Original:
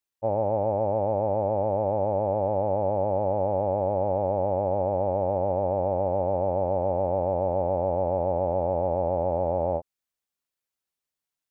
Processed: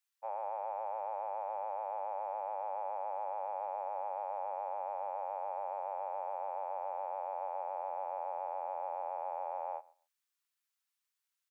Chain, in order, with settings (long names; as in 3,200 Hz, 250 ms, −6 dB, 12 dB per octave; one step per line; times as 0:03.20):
high-pass filter 1,000 Hz 24 dB per octave
on a send: repeating echo 132 ms, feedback 16%, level −23 dB
on the sum: level +1 dB